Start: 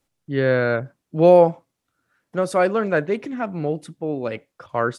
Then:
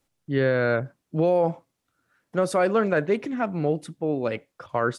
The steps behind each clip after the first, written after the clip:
brickwall limiter −12 dBFS, peak gain reduction 10 dB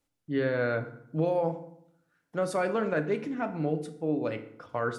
feedback delay network reverb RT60 0.72 s, low-frequency decay 1.25×, high-frequency decay 0.7×, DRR 7 dB
level −6.5 dB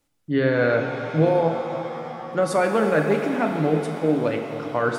reverb with rising layers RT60 3.9 s, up +7 semitones, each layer −8 dB, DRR 5.5 dB
level +7.5 dB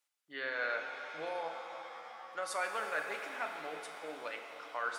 high-pass filter 1,100 Hz 12 dB per octave
level −8 dB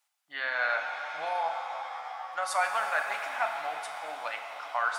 low shelf with overshoot 560 Hz −9 dB, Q 3
level +6 dB

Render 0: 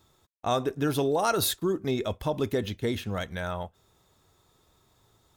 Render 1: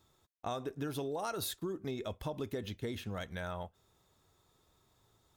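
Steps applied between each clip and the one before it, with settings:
downward compressor 4 to 1, threshold −29 dBFS, peak gain reduction 8 dB
level −6 dB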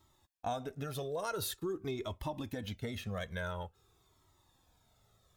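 flanger whose copies keep moving one way falling 0.47 Hz
level +5 dB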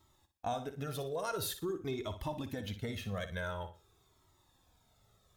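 flutter between parallel walls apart 10.2 metres, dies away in 0.33 s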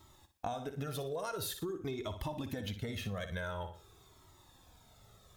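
downward compressor, threshold −44 dBFS, peak gain reduction 11.5 dB
level +8 dB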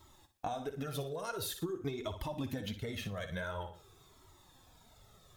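flanger 1.4 Hz, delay 1.7 ms, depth 7.1 ms, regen +44%
level +4 dB

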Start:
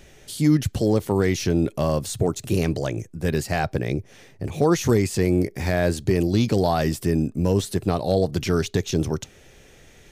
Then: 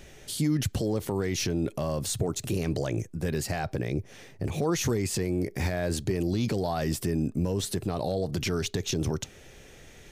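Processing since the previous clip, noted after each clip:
brickwall limiter −18.5 dBFS, peak gain reduction 10 dB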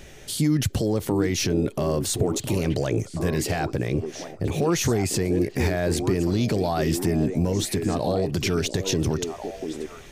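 echo through a band-pass that steps 695 ms, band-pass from 340 Hz, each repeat 1.4 octaves, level −3.5 dB
level +4.5 dB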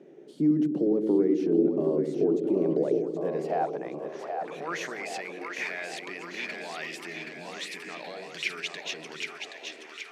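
elliptic high-pass filter 150 Hz
band-pass filter sweep 350 Hz → 2,300 Hz, 0:02.54–0:05.24
echo with a time of its own for lows and highs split 490 Hz, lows 103 ms, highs 775 ms, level −5 dB
level +3 dB

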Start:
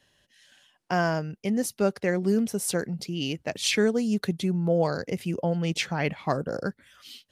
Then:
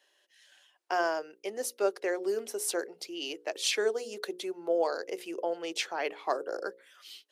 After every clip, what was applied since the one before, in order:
Chebyshev high-pass filter 350 Hz, order 4
mains-hum notches 60/120/180/240/300/360/420/480/540 Hz
dynamic equaliser 2,100 Hz, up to −4 dB, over −46 dBFS, Q 2.6
level −2 dB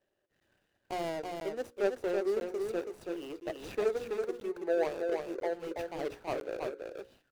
running median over 41 samples
single-tap delay 328 ms −4.5 dB
regular buffer underruns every 1.00 s, samples 512, zero, from 0:00.40

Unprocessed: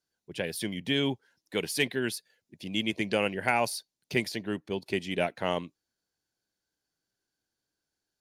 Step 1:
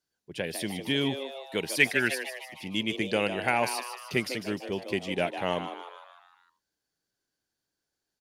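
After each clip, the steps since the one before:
gain on a spectral selection 0:01.81–0:02.67, 1,200–2,700 Hz +9 dB
echo with shifted repeats 152 ms, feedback 53%, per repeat +130 Hz, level −9.5 dB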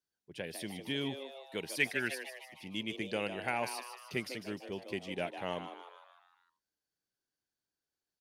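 notch filter 7,200 Hz, Q 26
level −8.5 dB

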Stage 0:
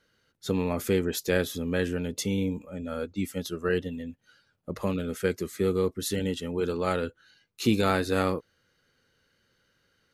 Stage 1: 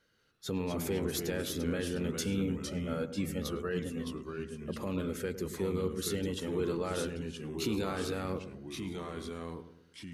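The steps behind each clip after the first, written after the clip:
brickwall limiter −21 dBFS, peak gain reduction 10.5 dB
delay with pitch and tempo change per echo 190 ms, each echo −2 semitones, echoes 2, each echo −6 dB
feedback echo with a low-pass in the loop 107 ms, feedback 49%, low-pass 980 Hz, level −10 dB
level −3.5 dB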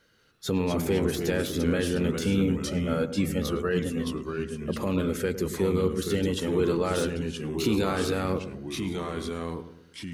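de-essing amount 90%
level +8 dB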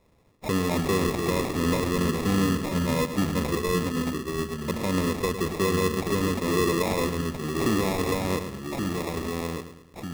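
in parallel at −0.5 dB: brickwall limiter −19 dBFS, peak gain reduction 6.5 dB
on the sum: decimation without filtering 29×
level −3.5 dB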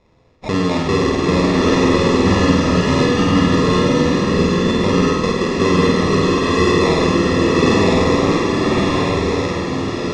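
low-pass filter 6,100 Hz 24 dB per octave
on a send: flutter between parallel walls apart 8.5 metres, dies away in 0.79 s
on the sum: slow-attack reverb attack 1,040 ms, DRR −1 dB
level +5.5 dB

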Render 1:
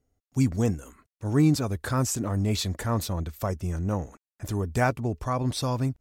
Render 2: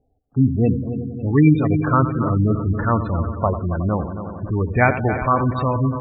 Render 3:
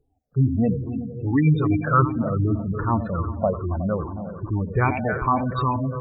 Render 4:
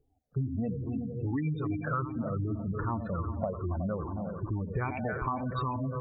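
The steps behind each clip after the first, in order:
auto-filter low-pass saw up 1.2 Hz 820–3,100 Hz; echo machine with several playback heads 91 ms, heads first and third, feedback 72%, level −11.5 dB; gate on every frequency bin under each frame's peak −20 dB strong; level +6.5 dB
rippled gain that drifts along the octave scale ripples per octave 0.62, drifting −2.5 Hz, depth 18 dB; level −6.5 dB
downward compressor 6 to 1, threshold −26 dBFS, peak gain reduction 13 dB; level −3 dB

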